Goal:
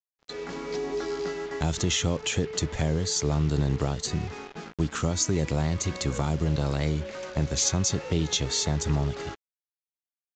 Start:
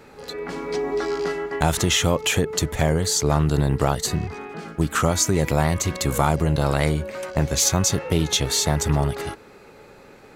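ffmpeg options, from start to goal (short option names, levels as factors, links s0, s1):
-filter_complex "[0:a]agate=range=0.355:threshold=0.0178:ratio=16:detection=peak,acrossover=split=440|3000[s0][s1][s2];[s1]acompressor=threshold=0.0224:ratio=2.5[s3];[s0][s3][s2]amix=inputs=3:normalize=0,acrusher=bits=5:mix=0:aa=0.5,aresample=16000,aresample=44100,volume=0.596"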